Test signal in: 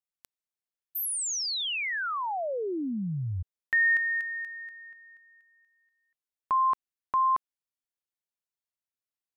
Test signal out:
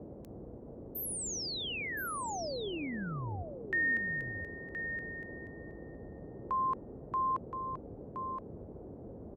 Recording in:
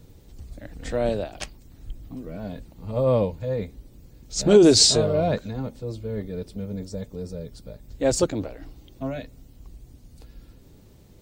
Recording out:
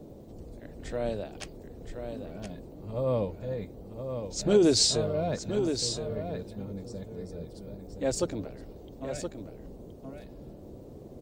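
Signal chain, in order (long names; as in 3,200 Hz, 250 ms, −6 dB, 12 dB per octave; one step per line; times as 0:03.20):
noise in a band 34–510 Hz −40 dBFS
single-tap delay 1,021 ms −7.5 dB
level −7.5 dB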